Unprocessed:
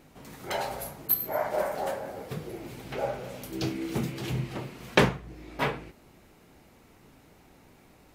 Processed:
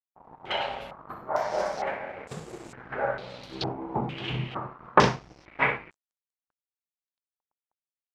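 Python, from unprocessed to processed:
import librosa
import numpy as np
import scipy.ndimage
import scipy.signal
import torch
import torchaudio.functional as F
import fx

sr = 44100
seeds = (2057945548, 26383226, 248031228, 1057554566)

y = fx.room_early_taps(x, sr, ms=(38, 63), db=(-13.0, -8.5))
y = np.sign(y) * np.maximum(np.abs(y) - 10.0 ** (-45.0 / 20.0), 0.0)
y = fx.peak_eq(y, sr, hz=950.0, db=5.0, octaves=1.6)
y = fx.filter_held_lowpass(y, sr, hz=2.2, low_hz=880.0, high_hz=7600.0)
y = y * 10.0 ** (-2.5 / 20.0)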